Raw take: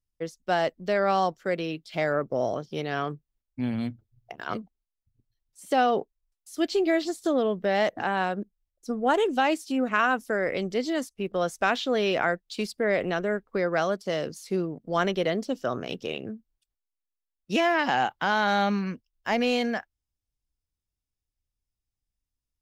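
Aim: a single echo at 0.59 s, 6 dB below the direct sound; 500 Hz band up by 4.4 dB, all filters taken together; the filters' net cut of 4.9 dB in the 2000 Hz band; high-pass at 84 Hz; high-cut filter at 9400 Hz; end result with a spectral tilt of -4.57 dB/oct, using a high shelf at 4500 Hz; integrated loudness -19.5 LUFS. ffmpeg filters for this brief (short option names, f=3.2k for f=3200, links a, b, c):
-af "highpass=84,lowpass=9.4k,equalizer=f=500:t=o:g=6,equalizer=f=2k:t=o:g=-6,highshelf=f=4.5k:g=-8,aecho=1:1:590:0.501,volume=5dB"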